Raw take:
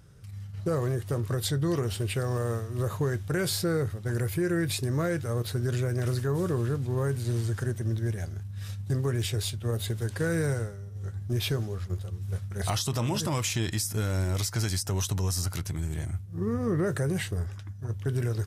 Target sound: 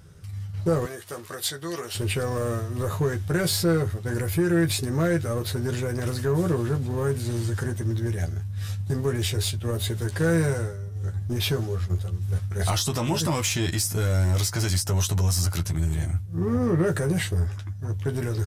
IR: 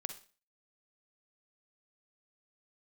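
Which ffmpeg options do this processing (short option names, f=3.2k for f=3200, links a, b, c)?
-filter_complex "[0:a]asettb=1/sr,asplit=3[a][b][c];[a]atrim=end=0.854[d];[b]atrim=start=0.85:end=1.95,asetpts=PTS-STARTPTS,afade=t=in:d=0.004:c=qsin,afade=t=out:st=1.096:d=0.004:c=qsin,highpass=f=1.2k:p=1[e];[c]atrim=start=1.946[f];[d][e]acrossfade=d=0.004:c1=hsin:c2=qsin[g];[g][f]acrossfade=d=0.004:c1=qsin:c2=hsin,asplit=2[h][i];[i]asoftclip=type=hard:threshold=-27.5dB,volume=-4dB[j];[h][j]amix=inputs=2:normalize=0,asplit=2[k][l];[l]adelay=12,volume=-5.5dB[m];[k][m]amix=inputs=2:normalize=0"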